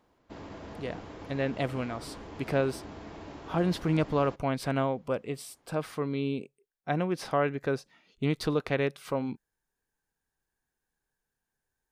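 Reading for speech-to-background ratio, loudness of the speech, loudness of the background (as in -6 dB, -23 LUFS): 13.5 dB, -31.5 LUFS, -45.0 LUFS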